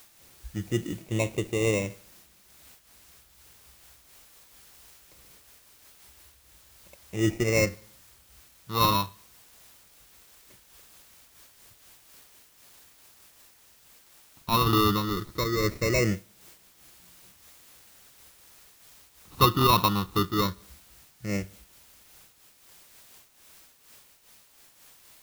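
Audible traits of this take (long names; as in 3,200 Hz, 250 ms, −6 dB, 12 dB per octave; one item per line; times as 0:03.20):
aliases and images of a low sample rate 1,600 Hz, jitter 0%
phaser sweep stages 6, 0.19 Hz, lowest notch 570–1,300 Hz
a quantiser's noise floor 10 bits, dither triangular
amplitude modulation by smooth noise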